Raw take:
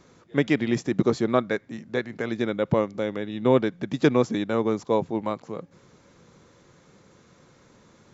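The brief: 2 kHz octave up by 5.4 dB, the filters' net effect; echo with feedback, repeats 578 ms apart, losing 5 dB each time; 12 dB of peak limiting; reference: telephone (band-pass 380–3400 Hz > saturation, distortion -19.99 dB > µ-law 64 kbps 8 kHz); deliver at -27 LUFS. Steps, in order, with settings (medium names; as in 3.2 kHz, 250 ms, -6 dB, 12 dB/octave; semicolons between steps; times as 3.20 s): peaking EQ 2 kHz +7 dB; peak limiter -16.5 dBFS; band-pass 380–3400 Hz; feedback delay 578 ms, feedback 56%, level -5 dB; saturation -20.5 dBFS; trim +6 dB; µ-law 64 kbps 8 kHz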